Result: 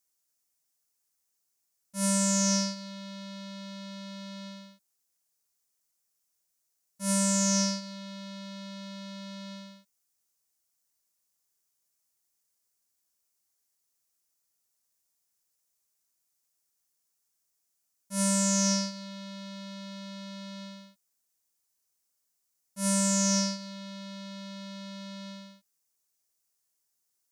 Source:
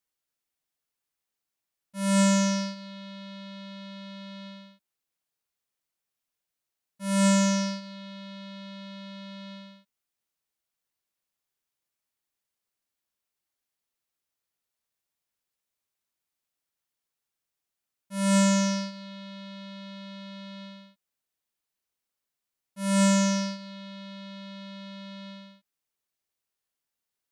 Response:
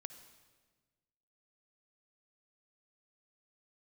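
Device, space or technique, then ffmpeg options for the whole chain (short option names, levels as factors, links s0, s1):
over-bright horn tweeter: -af "highshelf=f=4500:t=q:w=1.5:g=8.5,alimiter=limit=0.168:level=0:latency=1"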